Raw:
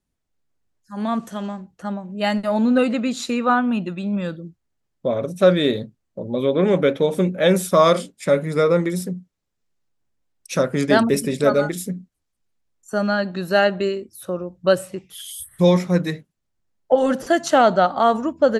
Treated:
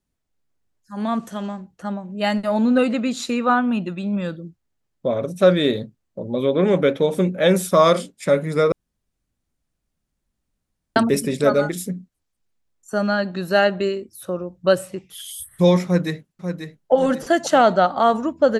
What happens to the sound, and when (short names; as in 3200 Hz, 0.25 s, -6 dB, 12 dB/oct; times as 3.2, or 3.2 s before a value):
8.72–10.96 room tone
15.85–16.92 echo throw 0.54 s, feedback 40%, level -8 dB